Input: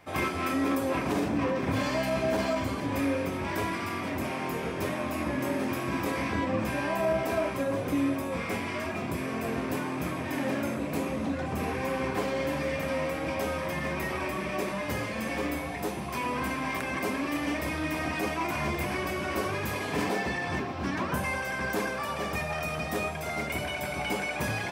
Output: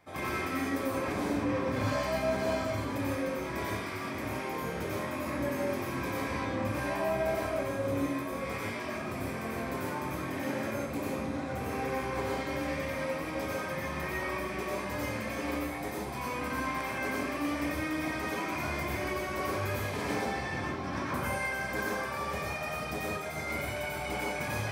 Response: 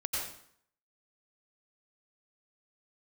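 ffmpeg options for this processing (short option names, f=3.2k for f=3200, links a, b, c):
-filter_complex "[0:a]bandreject=f=2.8k:w=9.1[a];[1:a]atrim=start_sample=2205,afade=t=out:st=0.26:d=0.01,atrim=end_sample=11907[b];[a][b]afir=irnorm=-1:irlink=0,volume=-6.5dB"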